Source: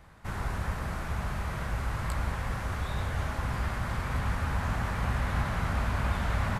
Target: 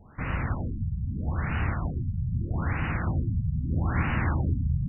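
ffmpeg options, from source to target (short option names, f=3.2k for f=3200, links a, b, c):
-af "asetrate=59535,aresample=44100,afftfilt=real='re*lt(b*sr/1024,200*pow(3000/200,0.5+0.5*sin(2*PI*0.79*pts/sr)))':imag='im*lt(b*sr/1024,200*pow(3000/200,0.5+0.5*sin(2*PI*0.79*pts/sr)))':win_size=1024:overlap=0.75,volume=3.5dB"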